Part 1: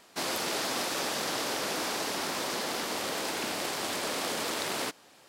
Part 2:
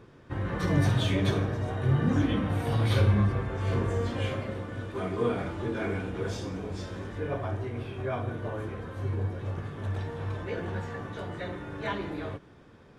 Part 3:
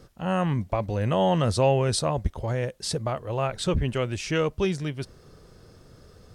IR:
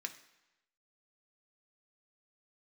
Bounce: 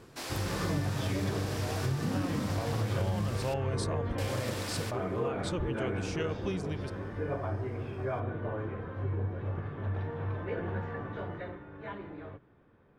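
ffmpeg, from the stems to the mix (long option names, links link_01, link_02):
-filter_complex "[0:a]asoftclip=type=tanh:threshold=-24.5dB,volume=-9.5dB,asplit=3[link_01][link_02][link_03];[link_01]atrim=end=3.54,asetpts=PTS-STARTPTS,afade=type=out:start_time=3.536:duration=0.004:curve=hsin[link_04];[link_02]atrim=start=3.54:end=4.18,asetpts=PTS-STARTPTS,volume=0[link_05];[link_03]atrim=start=4.18,asetpts=PTS-STARTPTS,afade=type=in:duration=0.004:curve=hsin[link_06];[link_04][link_05][link_06]concat=n=3:v=0:a=1,asplit=2[link_07][link_08];[link_08]volume=-3dB[link_09];[1:a]lowpass=2200,bandreject=frequency=60:width_type=h:width=6,bandreject=frequency=120:width_type=h:width=6,bandreject=frequency=180:width_type=h:width=6,bandreject=frequency=240:width_type=h:width=6,volume=-0.5dB,afade=type=out:start_time=11.22:duration=0.42:silence=0.398107[link_10];[2:a]adelay=1850,volume=-8.5dB[link_11];[3:a]atrim=start_sample=2205[link_12];[link_09][link_12]afir=irnorm=-1:irlink=0[link_13];[link_07][link_10][link_11][link_13]amix=inputs=4:normalize=0,acompressor=threshold=-28dB:ratio=5"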